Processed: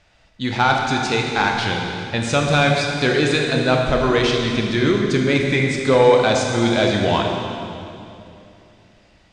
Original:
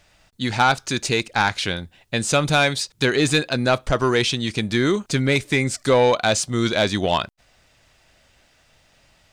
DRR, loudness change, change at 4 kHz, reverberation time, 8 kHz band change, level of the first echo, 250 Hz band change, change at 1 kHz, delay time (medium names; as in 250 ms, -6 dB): 0.5 dB, +2.5 dB, +0.5 dB, 2.8 s, -4.0 dB, no echo, +3.5 dB, +2.5 dB, no echo